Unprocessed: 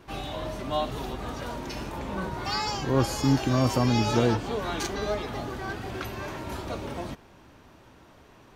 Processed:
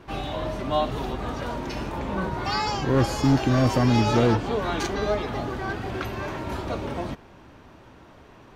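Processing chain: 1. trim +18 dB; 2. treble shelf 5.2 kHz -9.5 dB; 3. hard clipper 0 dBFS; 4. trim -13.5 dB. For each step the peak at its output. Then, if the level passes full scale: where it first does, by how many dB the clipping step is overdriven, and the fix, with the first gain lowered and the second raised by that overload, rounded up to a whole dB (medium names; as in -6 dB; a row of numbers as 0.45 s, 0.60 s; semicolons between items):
+8.0 dBFS, +8.0 dBFS, 0.0 dBFS, -13.5 dBFS; step 1, 8.0 dB; step 1 +10 dB, step 4 -5.5 dB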